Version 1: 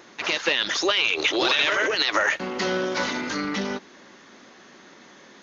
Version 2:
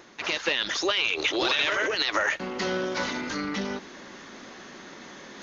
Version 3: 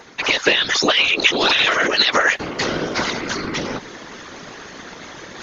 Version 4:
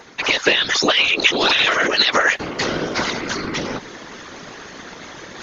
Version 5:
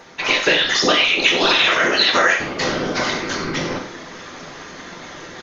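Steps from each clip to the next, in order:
low-shelf EQ 65 Hz +11 dB; reversed playback; upward compression, threshold −31 dBFS; reversed playback; level −3.5 dB
harmonic and percussive parts rebalanced percussive +8 dB; random phases in short frames; floating-point word with a short mantissa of 8 bits; level +3.5 dB
no processing that can be heard
single-tap delay 93 ms −10.5 dB; on a send at −1 dB: convolution reverb, pre-delay 5 ms; on the sum: level −2 dB

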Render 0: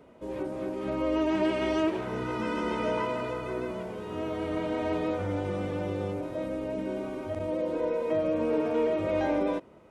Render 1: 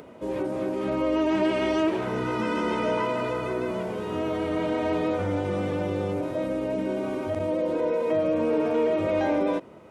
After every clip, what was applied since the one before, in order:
in parallel at +1 dB: brickwall limiter −28 dBFS, peak gain reduction 11 dB
on the sum: high-pass filter 77 Hz
upward compression, threshold −42 dBFS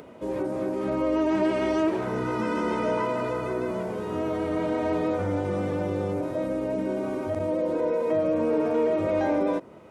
dynamic equaliser 3,000 Hz, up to −6 dB, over −51 dBFS, Q 1.5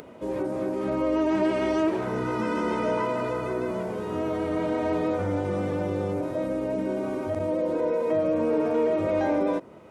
upward compression, threshold −43 dBFS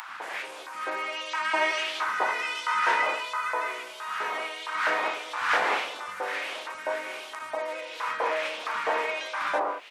wind on the microphone 510 Hz −29 dBFS
auto-filter high-pass saw up 1.5 Hz 950–3,600 Hz
three-band delay without the direct sound highs, lows, mids 80/200 ms, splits 210/1,100 Hz
level +6 dB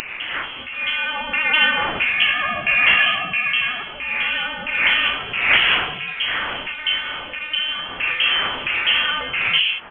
voice inversion scrambler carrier 3,700 Hz
level +9 dB

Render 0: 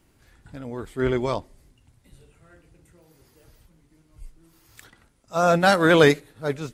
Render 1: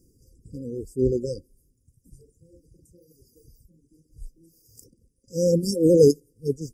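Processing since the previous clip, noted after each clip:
brick-wall band-stop 540–4,700 Hz
reverb reduction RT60 1.2 s
level +2.5 dB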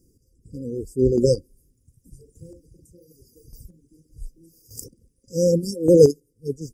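square-wave tremolo 0.85 Hz, depth 65%, duty 15%
automatic gain control gain up to 14 dB
level −1 dB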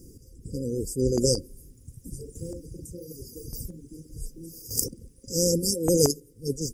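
every bin compressed towards the loudest bin 2 to 1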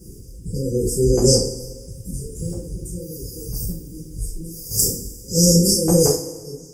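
fade-out on the ending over 1.10 s
coupled-rooms reverb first 0.41 s, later 1.5 s, from −15 dB, DRR −9 dB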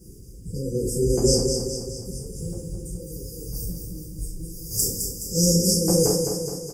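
repeating echo 211 ms, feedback 54%, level −6 dB
level −5 dB

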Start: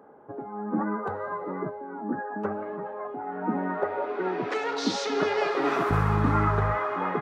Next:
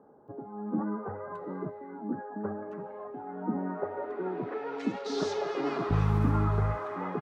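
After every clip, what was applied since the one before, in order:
low-shelf EQ 360 Hz +8.5 dB
multiband delay without the direct sound lows, highs 280 ms, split 1,800 Hz
level −8.5 dB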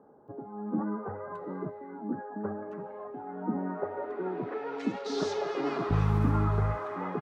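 no processing that can be heard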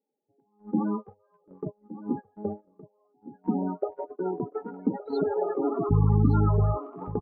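spectral peaks only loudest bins 16
noise gate −34 dBFS, range −32 dB
single-tap delay 1,167 ms −15 dB
level +5 dB

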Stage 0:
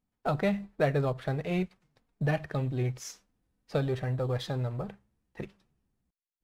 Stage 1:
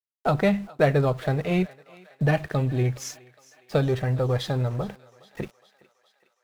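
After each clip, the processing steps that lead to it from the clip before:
centre clipping without the shift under −52.5 dBFS
feedback echo with a high-pass in the loop 414 ms, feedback 65%, high-pass 600 Hz, level −20 dB
level +6.5 dB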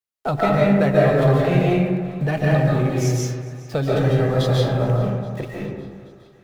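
in parallel at +1.5 dB: brickwall limiter −20 dBFS, peak gain reduction 11 dB
on the sum: convolution reverb RT60 1.7 s, pre-delay 105 ms, DRR −4.5 dB
level −4.5 dB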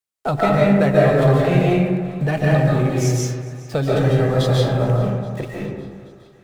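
parametric band 8,200 Hz +4 dB 0.49 octaves
level +1.5 dB

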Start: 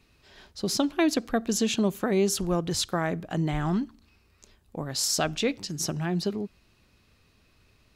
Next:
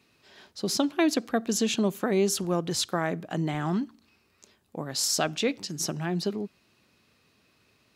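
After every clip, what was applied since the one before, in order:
high-pass filter 150 Hz 12 dB per octave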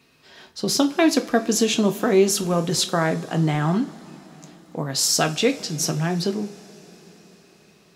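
convolution reverb, pre-delay 3 ms, DRR 6 dB
level +5.5 dB

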